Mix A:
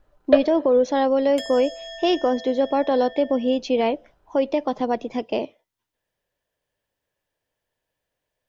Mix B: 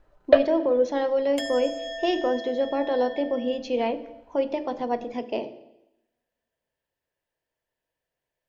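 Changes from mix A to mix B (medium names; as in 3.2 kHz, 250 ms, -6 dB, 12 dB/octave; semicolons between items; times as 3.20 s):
speech -7.0 dB; reverb: on, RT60 0.90 s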